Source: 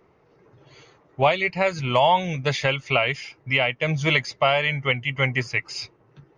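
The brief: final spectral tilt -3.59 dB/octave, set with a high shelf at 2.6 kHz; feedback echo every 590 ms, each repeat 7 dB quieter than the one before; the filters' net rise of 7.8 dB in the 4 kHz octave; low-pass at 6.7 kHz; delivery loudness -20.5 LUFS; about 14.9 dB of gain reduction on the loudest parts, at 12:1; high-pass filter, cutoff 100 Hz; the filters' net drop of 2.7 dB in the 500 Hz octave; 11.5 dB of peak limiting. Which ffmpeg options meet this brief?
-af "highpass=100,lowpass=6700,equalizer=f=500:t=o:g=-4,highshelf=f=2600:g=5.5,equalizer=f=4000:t=o:g=7,acompressor=threshold=0.0398:ratio=12,alimiter=level_in=1.19:limit=0.0631:level=0:latency=1,volume=0.841,aecho=1:1:590|1180|1770|2360|2950:0.447|0.201|0.0905|0.0407|0.0183,volume=5.31"

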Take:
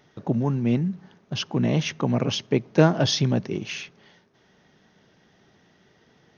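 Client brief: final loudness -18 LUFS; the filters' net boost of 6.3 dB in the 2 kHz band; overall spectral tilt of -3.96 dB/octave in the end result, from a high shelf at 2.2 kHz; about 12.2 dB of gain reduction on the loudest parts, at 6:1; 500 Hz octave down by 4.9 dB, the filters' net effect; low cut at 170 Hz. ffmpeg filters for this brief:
-af "highpass=170,equalizer=f=500:t=o:g=-7,equalizer=f=2000:t=o:g=4.5,highshelf=f=2200:g=7.5,acompressor=threshold=0.0447:ratio=6,volume=4.47"

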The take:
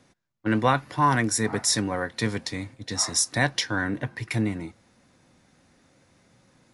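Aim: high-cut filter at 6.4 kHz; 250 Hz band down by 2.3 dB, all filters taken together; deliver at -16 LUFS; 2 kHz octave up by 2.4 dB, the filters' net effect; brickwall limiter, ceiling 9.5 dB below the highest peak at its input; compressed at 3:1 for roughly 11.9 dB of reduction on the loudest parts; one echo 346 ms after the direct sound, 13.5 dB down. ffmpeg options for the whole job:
-af "lowpass=6400,equalizer=f=250:t=o:g=-3,equalizer=f=2000:t=o:g=3,acompressor=threshold=0.0251:ratio=3,alimiter=level_in=1.58:limit=0.0631:level=0:latency=1,volume=0.631,aecho=1:1:346:0.211,volume=13.3"

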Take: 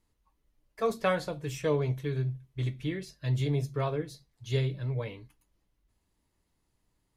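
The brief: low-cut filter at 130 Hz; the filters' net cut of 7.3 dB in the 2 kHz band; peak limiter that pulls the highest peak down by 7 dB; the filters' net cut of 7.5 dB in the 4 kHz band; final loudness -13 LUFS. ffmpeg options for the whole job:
-af "highpass=130,equalizer=f=2000:t=o:g=-8.5,equalizer=f=4000:t=o:g=-6.5,volume=14.1,alimiter=limit=0.841:level=0:latency=1"

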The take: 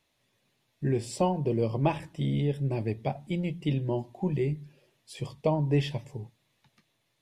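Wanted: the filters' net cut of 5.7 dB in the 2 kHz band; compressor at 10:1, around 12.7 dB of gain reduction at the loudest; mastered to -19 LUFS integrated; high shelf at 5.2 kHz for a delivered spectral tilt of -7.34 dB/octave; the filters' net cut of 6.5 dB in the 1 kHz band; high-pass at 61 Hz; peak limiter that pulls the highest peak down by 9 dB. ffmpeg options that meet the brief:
-af "highpass=61,equalizer=f=1000:t=o:g=-8,equalizer=f=2000:t=o:g=-4.5,highshelf=f=5200:g=-6.5,acompressor=threshold=0.0178:ratio=10,volume=15,alimiter=limit=0.376:level=0:latency=1"

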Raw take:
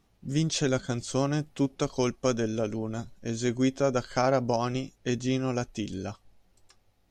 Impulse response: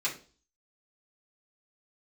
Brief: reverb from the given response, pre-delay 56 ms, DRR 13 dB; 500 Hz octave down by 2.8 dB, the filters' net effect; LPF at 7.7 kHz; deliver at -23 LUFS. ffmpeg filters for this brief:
-filter_complex "[0:a]lowpass=7700,equalizer=f=500:t=o:g=-3.5,asplit=2[s0][s1];[1:a]atrim=start_sample=2205,adelay=56[s2];[s1][s2]afir=irnorm=-1:irlink=0,volume=0.106[s3];[s0][s3]amix=inputs=2:normalize=0,volume=2.24"

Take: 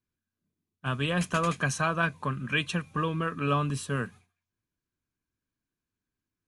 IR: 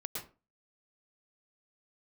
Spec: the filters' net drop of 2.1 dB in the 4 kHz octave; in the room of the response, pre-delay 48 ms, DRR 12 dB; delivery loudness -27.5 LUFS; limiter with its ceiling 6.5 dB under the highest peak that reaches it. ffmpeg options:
-filter_complex "[0:a]equalizer=f=4000:t=o:g=-3,alimiter=limit=0.0891:level=0:latency=1,asplit=2[s0][s1];[1:a]atrim=start_sample=2205,adelay=48[s2];[s1][s2]afir=irnorm=-1:irlink=0,volume=0.237[s3];[s0][s3]amix=inputs=2:normalize=0,volume=1.58"

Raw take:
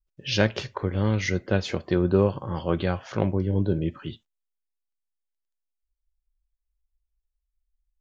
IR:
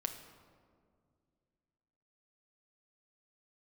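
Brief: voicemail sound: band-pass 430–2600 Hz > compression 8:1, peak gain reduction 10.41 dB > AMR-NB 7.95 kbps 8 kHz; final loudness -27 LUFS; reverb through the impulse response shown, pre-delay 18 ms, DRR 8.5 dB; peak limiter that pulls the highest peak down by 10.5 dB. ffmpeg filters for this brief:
-filter_complex "[0:a]alimiter=limit=0.133:level=0:latency=1,asplit=2[s0][s1];[1:a]atrim=start_sample=2205,adelay=18[s2];[s1][s2]afir=irnorm=-1:irlink=0,volume=0.376[s3];[s0][s3]amix=inputs=2:normalize=0,highpass=430,lowpass=2600,acompressor=threshold=0.0158:ratio=8,volume=5.96" -ar 8000 -c:a libopencore_amrnb -b:a 7950

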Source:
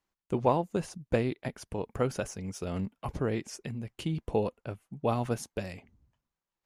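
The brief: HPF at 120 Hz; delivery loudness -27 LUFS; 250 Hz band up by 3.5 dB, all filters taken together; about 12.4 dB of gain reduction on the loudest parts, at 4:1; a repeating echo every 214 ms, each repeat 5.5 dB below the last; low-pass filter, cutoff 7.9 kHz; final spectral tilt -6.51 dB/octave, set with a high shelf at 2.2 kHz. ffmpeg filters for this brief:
-af "highpass=120,lowpass=7900,equalizer=f=250:t=o:g=5,highshelf=f=2200:g=-5,acompressor=threshold=0.0178:ratio=4,aecho=1:1:214|428|642|856|1070|1284|1498:0.531|0.281|0.149|0.079|0.0419|0.0222|0.0118,volume=4.22"

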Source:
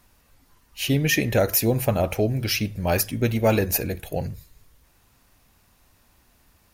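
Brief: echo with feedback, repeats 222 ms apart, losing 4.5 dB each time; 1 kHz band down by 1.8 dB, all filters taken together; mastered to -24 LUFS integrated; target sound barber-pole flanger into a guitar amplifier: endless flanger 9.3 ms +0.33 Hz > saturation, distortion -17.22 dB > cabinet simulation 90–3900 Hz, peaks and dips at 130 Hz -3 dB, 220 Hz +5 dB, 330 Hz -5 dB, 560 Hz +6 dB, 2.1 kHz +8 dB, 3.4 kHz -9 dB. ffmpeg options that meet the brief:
-filter_complex "[0:a]equalizer=f=1000:t=o:g=-4.5,aecho=1:1:222|444|666|888|1110|1332|1554|1776|1998:0.596|0.357|0.214|0.129|0.0772|0.0463|0.0278|0.0167|0.01,asplit=2[s0][s1];[s1]adelay=9.3,afreqshift=0.33[s2];[s0][s2]amix=inputs=2:normalize=1,asoftclip=threshold=0.158,highpass=90,equalizer=f=130:t=q:w=4:g=-3,equalizer=f=220:t=q:w=4:g=5,equalizer=f=330:t=q:w=4:g=-5,equalizer=f=560:t=q:w=4:g=6,equalizer=f=2100:t=q:w=4:g=8,equalizer=f=3400:t=q:w=4:g=-9,lowpass=f=3900:w=0.5412,lowpass=f=3900:w=1.3066,volume=1.19"

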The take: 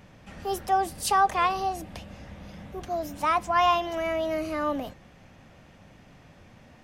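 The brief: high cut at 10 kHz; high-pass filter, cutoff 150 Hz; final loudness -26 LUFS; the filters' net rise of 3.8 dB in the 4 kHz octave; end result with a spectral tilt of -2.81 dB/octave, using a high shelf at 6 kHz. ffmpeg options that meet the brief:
-af "highpass=150,lowpass=10000,equalizer=f=4000:t=o:g=6.5,highshelf=f=6000:g=-3.5"

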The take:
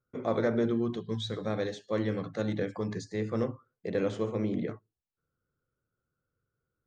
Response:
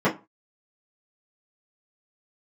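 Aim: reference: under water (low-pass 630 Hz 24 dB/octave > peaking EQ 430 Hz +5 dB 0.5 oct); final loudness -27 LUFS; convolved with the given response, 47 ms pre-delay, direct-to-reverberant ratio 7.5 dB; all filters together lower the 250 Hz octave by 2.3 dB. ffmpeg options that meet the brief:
-filter_complex "[0:a]equalizer=f=250:t=o:g=-4,asplit=2[s0][s1];[1:a]atrim=start_sample=2205,adelay=47[s2];[s1][s2]afir=irnorm=-1:irlink=0,volume=0.0596[s3];[s0][s3]amix=inputs=2:normalize=0,lowpass=f=630:w=0.5412,lowpass=f=630:w=1.3066,equalizer=f=430:t=o:w=0.5:g=5,volume=1.5"

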